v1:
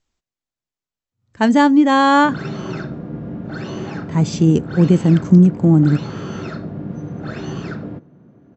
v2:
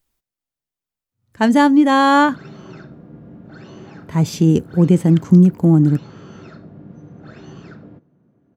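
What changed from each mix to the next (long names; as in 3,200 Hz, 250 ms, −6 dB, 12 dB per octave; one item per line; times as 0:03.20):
speech: remove linear-phase brick-wall low-pass 8,000 Hz
background −11.0 dB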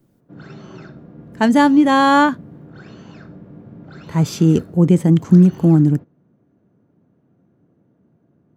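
background: entry −1.95 s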